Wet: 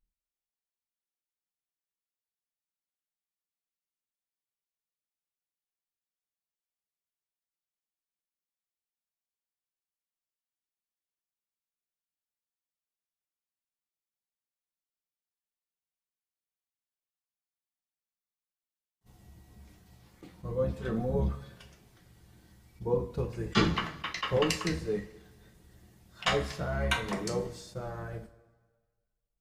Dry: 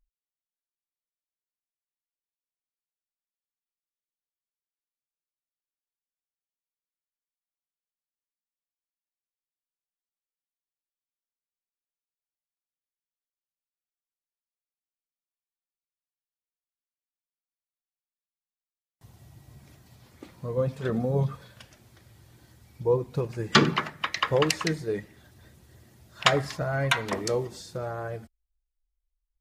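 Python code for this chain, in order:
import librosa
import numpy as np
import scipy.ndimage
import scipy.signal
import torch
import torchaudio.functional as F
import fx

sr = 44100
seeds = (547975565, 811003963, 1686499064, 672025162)

y = fx.octave_divider(x, sr, octaves=1, level_db=-3.0)
y = fx.rev_double_slope(y, sr, seeds[0], early_s=0.28, late_s=1.5, knee_db=-19, drr_db=1.5)
y = fx.attack_slew(y, sr, db_per_s=540.0)
y = y * 10.0 ** (-7.0 / 20.0)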